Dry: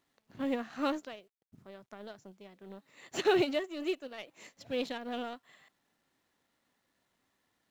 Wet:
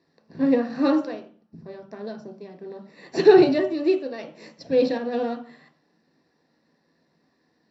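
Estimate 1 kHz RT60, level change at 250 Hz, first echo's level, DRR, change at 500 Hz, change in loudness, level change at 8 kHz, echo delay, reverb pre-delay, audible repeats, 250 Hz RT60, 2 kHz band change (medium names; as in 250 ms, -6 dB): 0.40 s, +14.0 dB, no echo, 4.0 dB, +14.0 dB, +13.0 dB, no reading, no echo, 3 ms, no echo, 0.80 s, +6.0 dB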